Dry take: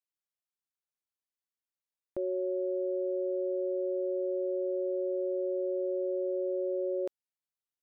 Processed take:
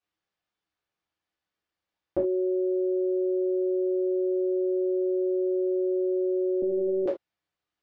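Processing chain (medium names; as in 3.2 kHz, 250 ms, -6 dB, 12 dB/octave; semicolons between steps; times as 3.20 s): distance through air 190 m; reverberation, pre-delay 3 ms, DRR -7 dB; 6.62–7.06 s: monotone LPC vocoder at 8 kHz 190 Hz; trim +6 dB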